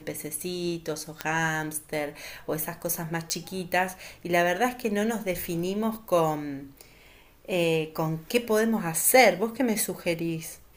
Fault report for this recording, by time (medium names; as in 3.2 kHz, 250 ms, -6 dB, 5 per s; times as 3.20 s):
1.21 s: pop -12 dBFS
3.30 s: pop -13 dBFS
5.95 s: dropout 2.1 ms